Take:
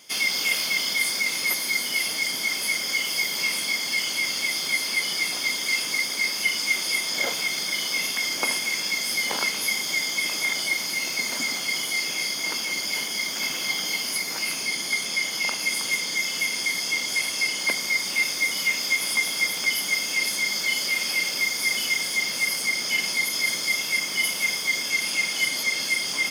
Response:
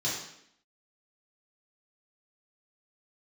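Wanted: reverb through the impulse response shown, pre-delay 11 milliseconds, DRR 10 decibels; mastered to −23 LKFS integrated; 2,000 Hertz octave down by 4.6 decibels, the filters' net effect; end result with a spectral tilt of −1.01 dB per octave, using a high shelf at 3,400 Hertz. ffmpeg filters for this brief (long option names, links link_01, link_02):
-filter_complex "[0:a]equalizer=frequency=2000:width_type=o:gain=-3.5,highshelf=frequency=3400:gain=-4.5,asplit=2[link_01][link_02];[1:a]atrim=start_sample=2205,adelay=11[link_03];[link_02][link_03]afir=irnorm=-1:irlink=0,volume=-17.5dB[link_04];[link_01][link_04]amix=inputs=2:normalize=0,volume=3.5dB"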